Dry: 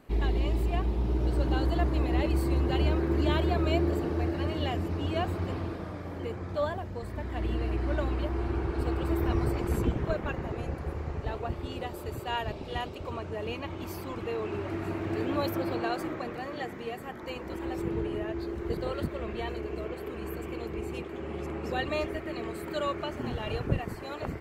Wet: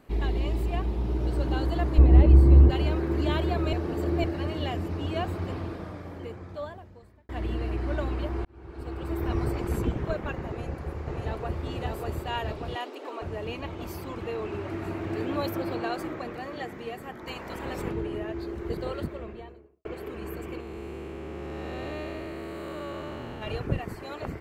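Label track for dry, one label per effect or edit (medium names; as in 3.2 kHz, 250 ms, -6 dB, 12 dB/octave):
1.980000	2.700000	tilt EQ -3.5 dB/octave
3.730000	4.240000	reverse
5.830000	7.290000	fade out linear
8.450000	9.390000	fade in
10.480000	11.630000	echo throw 590 ms, feedback 70%, level -2 dB
12.750000	13.220000	steep high-pass 250 Hz 96 dB/octave
17.260000	17.910000	spectral peaks clipped ceiling under each frame's peak by 13 dB
18.870000	19.850000	studio fade out
20.600000	23.420000	spectral blur width 455 ms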